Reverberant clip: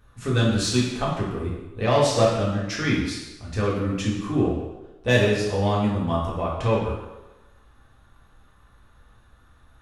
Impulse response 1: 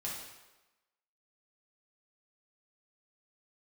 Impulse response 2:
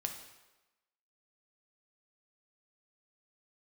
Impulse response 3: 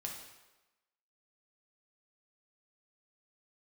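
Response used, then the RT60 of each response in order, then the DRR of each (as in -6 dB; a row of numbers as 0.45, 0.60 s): 1; 1.1, 1.1, 1.1 s; -5.5, 3.5, -1.0 dB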